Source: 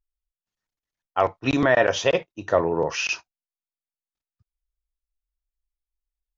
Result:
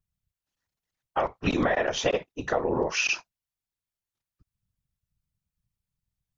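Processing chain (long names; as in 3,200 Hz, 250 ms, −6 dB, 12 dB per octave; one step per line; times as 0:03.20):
downward compressor 4 to 1, threshold −25 dBFS, peak gain reduction 10.5 dB
random phases in short frames
level +2.5 dB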